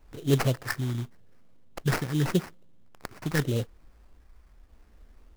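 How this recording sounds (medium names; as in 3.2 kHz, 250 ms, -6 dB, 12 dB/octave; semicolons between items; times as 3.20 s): phasing stages 4, 0.85 Hz, lowest notch 500–3700 Hz; aliases and images of a low sample rate 3.5 kHz, jitter 20%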